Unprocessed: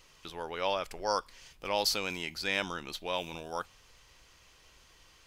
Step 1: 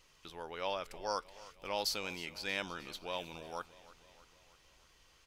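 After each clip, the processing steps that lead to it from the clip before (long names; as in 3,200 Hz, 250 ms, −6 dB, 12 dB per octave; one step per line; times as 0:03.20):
repeating echo 314 ms, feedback 60%, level −18.5 dB
level −6 dB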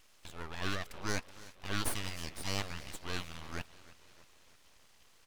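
full-wave rectification
level +3.5 dB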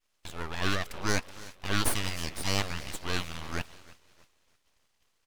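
downward expander −50 dBFS
level +7 dB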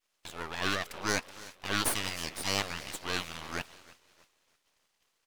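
low-shelf EQ 150 Hz −12 dB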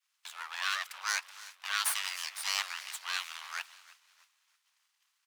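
high-pass filter 1,000 Hz 24 dB per octave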